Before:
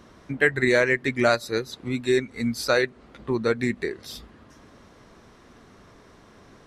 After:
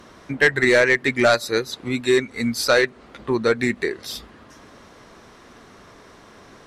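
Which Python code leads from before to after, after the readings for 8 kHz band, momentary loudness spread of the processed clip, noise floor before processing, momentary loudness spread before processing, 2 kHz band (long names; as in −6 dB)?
+6.5 dB, 16 LU, −53 dBFS, 16 LU, +5.0 dB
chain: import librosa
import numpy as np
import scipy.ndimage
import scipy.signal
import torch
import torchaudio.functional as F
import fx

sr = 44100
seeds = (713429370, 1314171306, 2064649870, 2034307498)

p1 = fx.low_shelf(x, sr, hz=290.0, db=-7.0)
p2 = fx.fold_sine(p1, sr, drive_db=7, ceiling_db=-7.0)
y = p1 + (p2 * 10.0 ** (-9.0 / 20.0))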